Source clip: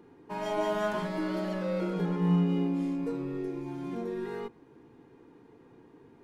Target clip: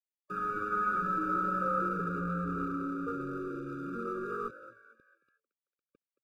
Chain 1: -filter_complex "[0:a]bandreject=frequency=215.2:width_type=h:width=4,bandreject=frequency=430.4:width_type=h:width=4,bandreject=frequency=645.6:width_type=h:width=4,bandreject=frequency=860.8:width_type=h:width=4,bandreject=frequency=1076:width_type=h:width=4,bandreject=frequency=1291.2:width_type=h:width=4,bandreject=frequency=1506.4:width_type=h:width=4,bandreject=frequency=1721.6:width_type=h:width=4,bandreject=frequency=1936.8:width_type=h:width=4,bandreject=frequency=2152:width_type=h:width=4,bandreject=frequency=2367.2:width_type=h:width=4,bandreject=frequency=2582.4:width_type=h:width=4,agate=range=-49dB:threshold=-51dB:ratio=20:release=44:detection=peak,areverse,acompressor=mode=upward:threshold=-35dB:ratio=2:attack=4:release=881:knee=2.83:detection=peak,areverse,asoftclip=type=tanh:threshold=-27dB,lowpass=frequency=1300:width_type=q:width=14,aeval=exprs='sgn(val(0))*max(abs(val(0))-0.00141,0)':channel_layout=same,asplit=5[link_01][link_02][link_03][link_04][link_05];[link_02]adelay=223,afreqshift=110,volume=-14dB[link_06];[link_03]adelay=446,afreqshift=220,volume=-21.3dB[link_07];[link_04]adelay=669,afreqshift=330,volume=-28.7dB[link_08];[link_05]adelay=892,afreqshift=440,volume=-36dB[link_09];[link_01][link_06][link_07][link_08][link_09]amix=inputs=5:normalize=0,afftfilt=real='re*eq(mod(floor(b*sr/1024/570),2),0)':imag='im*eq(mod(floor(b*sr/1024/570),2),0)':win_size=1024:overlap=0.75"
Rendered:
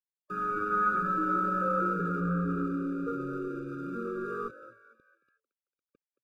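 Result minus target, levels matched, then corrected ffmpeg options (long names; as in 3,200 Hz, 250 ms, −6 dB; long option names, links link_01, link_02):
soft clipping: distortion −5 dB
-filter_complex "[0:a]bandreject=frequency=215.2:width_type=h:width=4,bandreject=frequency=430.4:width_type=h:width=4,bandreject=frequency=645.6:width_type=h:width=4,bandreject=frequency=860.8:width_type=h:width=4,bandreject=frequency=1076:width_type=h:width=4,bandreject=frequency=1291.2:width_type=h:width=4,bandreject=frequency=1506.4:width_type=h:width=4,bandreject=frequency=1721.6:width_type=h:width=4,bandreject=frequency=1936.8:width_type=h:width=4,bandreject=frequency=2152:width_type=h:width=4,bandreject=frequency=2367.2:width_type=h:width=4,bandreject=frequency=2582.4:width_type=h:width=4,agate=range=-49dB:threshold=-51dB:ratio=20:release=44:detection=peak,areverse,acompressor=mode=upward:threshold=-35dB:ratio=2:attack=4:release=881:knee=2.83:detection=peak,areverse,asoftclip=type=tanh:threshold=-33.5dB,lowpass=frequency=1300:width_type=q:width=14,aeval=exprs='sgn(val(0))*max(abs(val(0))-0.00141,0)':channel_layout=same,asplit=5[link_01][link_02][link_03][link_04][link_05];[link_02]adelay=223,afreqshift=110,volume=-14dB[link_06];[link_03]adelay=446,afreqshift=220,volume=-21.3dB[link_07];[link_04]adelay=669,afreqshift=330,volume=-28.7dB[link_08];[link_05]adelay=892,afreqshift=440,volume=-36dB[link_09];[link_01][link_06][link_07][link_08][link_09]amix=inputs=5:normalize=0,afftfilt=real='re*eq(mod(floor(b*sr/1024/570),2),0)':imag='im*eq(mod(floor(b*sr/1024/570),2),0)':win_size=1024:overlap=0.75"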